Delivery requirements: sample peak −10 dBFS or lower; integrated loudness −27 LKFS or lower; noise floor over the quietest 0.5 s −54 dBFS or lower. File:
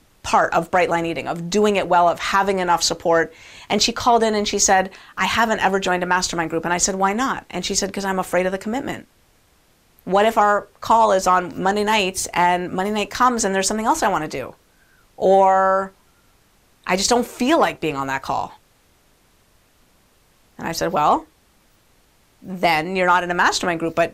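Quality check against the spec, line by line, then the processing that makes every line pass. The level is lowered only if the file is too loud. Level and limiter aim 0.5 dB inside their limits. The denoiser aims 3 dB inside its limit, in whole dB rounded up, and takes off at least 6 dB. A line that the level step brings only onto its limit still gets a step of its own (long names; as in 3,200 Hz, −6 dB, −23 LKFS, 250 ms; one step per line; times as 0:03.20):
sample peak −4.5 dBFS: out of spec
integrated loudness −19.0 LKFS: out of spec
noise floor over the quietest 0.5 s −58 dBFS: in spec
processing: level −8.5 dB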